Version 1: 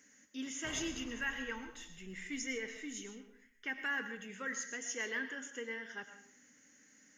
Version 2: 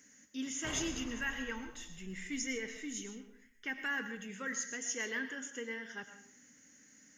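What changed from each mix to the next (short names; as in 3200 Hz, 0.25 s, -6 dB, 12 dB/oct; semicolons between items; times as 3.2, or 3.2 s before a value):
speech: add tone controls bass +6 dB, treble +4 dB; background +5.0 dB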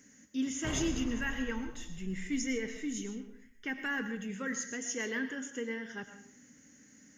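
master: add low shelf 500 Hz +9 dB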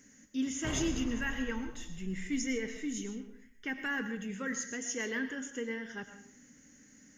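speech: remove HPF 67 Hz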